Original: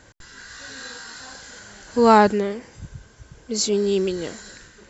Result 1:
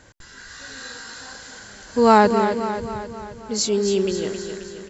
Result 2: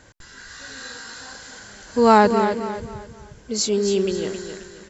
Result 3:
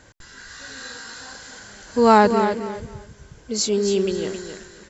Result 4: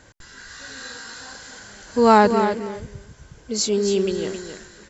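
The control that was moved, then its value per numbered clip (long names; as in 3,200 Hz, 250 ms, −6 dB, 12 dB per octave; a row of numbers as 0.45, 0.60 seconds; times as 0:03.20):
repeating echo, feedback: 56, 35, 23, 16%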